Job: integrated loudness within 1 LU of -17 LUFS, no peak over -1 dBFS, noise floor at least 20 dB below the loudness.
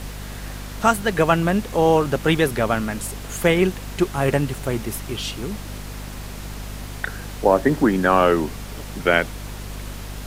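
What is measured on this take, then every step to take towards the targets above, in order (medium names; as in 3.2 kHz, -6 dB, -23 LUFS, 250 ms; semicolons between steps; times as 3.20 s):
hum 50 Hz; highest harmonic 250 Hz; hum level -32 dBFS; noise floor -34 dBFS; noise floor target -41 dBFS; loudness -21.0 LUFS; peak level -2.5 dBFS; loudness target -17.0 LUFS
-> hum notches 50/100/150/200/250 Hz; noise reduction 7 dB, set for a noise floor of -34 dBFS; trim +4 dB; peak limiter -1 dBFS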